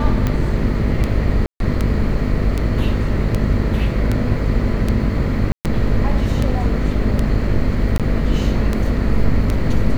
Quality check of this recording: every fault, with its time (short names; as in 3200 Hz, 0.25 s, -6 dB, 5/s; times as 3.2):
buzz 50 Hz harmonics 13 -21 dBFS
tick 78 rpm -7 dBFS
1.46–1.6 gap 0.142 s
5.52–5.65 gap 0.129 s
7.98–8 gap 17 ms